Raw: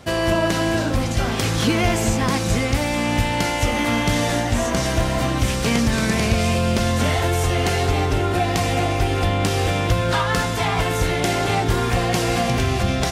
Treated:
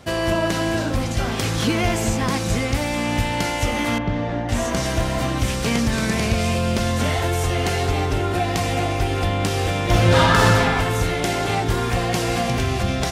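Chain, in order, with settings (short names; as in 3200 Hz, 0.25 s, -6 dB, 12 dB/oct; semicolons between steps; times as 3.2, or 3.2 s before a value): 3.98–4.49 tape spacing loss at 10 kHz 38 dB; 9.83–10.5 reverb throw, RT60 1.9 s, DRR -7 dB; gain -1.5 dB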